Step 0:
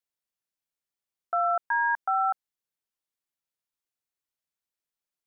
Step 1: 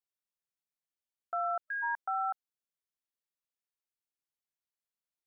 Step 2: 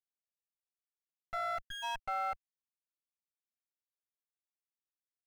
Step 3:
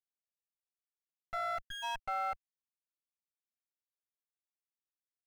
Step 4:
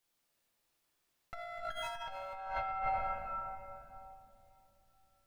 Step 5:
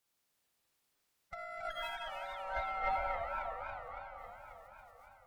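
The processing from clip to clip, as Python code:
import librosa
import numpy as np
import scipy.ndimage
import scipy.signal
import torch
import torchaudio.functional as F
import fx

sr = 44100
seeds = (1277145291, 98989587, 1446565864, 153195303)

y1 = fx.spec_erase(x, sr, start_s=1.61, length_s=0.22, low_hz=610.0, high_hz=1300.0)
y1 = y1 * 10.0 ** (-7.5 / 20.0)
y2 = fx.lower_of_two(y1, sr, delay_ms=7.6)
y2 = np.sign(y2) * np.maximum(np.abs(y2) - 10.0 ** (-57.5 / 20.0), 0.0)
y2 = y2 * 10.0 ** (-1.5 / 20.0)
y3 = y2
y4 = fx.room_shoebox(y3, sr, seeds[0], volume_m3=120.0, walls='hard', distance_m=0.76)
y4 = fx.over_compress(y4, sr, threshold_db=-44.0, ratio=-1.0)
y4 = y4 * 10.0 ** (4.0 / 20.0)
y5 = fx.spec_quant(y4, sr, step_db=30)
y5 = fx.cheby_harmonics(y5, sr, harmonics=(3,), levels_db=(-23,), full_scale_db=-23.0)
y5 = fx.echo_warbled(y5, sr, ms=275, feedback_pct=70, rate_hz=2.8, cents=197, wet_db=-8.5)
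y5 = y5 * 10.0 ** (2.0 / 20.0)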